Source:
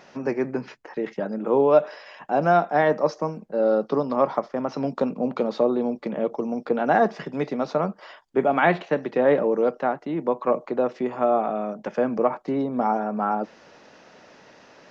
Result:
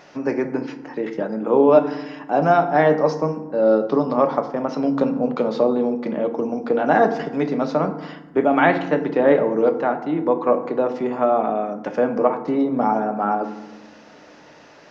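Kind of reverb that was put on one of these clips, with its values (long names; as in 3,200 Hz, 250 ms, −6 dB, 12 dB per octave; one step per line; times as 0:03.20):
feedback delay network reverb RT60 1 s, low-frequency decay 1.6×, high-frequency decay 0.5×, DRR 7 dB
level +2.5 dB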